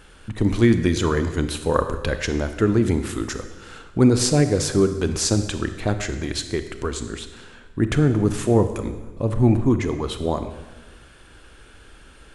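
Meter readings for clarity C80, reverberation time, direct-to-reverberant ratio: 11.5 dB, 1.2 s, 9.0 dB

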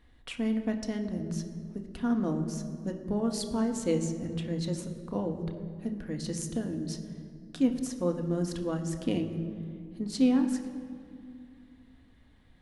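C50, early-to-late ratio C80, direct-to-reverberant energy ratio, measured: 9.0 dB, 10.0 dB, 4.0 dB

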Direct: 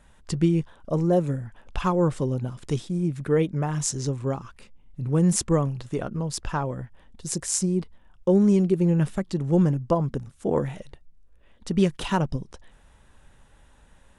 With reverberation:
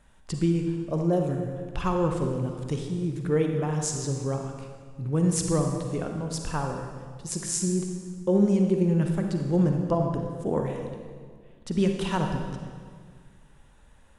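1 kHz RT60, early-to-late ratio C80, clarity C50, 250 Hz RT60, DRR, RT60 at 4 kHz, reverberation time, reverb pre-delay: 1.7 s, 5.5 dB, 3.5 dB, 2.1 s, 3.0 dB, 1.5 s, 1.8 s, 39 ms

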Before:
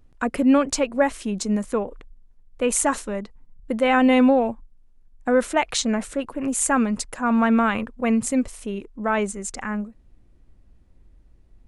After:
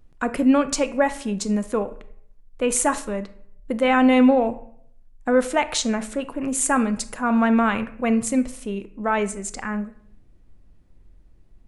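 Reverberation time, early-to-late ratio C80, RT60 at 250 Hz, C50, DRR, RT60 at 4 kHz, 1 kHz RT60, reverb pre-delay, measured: 0.65 s, 18.0 dB, 0.85 s, 15.0 dB, 11.0 dB, 0.40 s, 0.60 s, 5 ms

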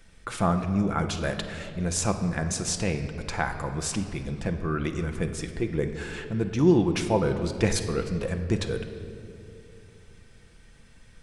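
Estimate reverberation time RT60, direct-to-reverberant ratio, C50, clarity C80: 2.7 s, 5.5 dB, 8.5 dB, 9.5 dB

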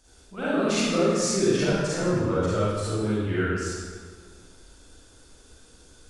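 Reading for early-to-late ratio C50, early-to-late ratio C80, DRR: −6.0 dB, −1.5 dB, −11.0 dB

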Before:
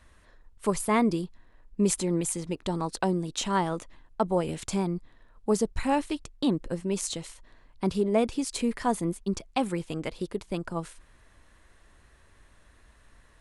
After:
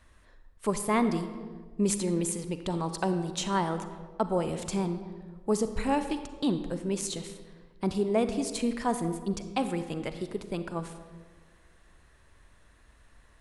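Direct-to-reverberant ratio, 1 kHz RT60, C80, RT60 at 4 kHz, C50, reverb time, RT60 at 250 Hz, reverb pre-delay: 9.0 dB, 1.3 s, 11.0 dB, 0.90 s, 9.5 dB, 1.5 s, 1.8 s, 38 ms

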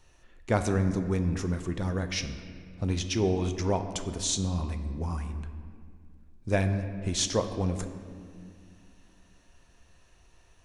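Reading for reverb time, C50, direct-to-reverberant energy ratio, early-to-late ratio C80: 2.2 s, 9.0 dB, 7.0 dB, 10.0 dB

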